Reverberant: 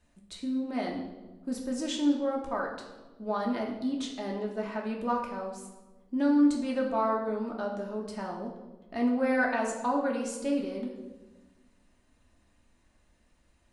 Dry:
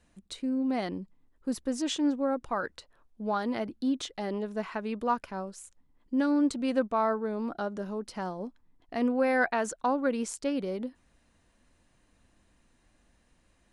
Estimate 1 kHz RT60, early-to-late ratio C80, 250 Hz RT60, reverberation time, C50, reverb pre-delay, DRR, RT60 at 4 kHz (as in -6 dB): 1.1 s, 8.0 dB, 1.7 s, 1.2 s, 5.5 dB, 3 ms, -1.5 dB, 0.85 s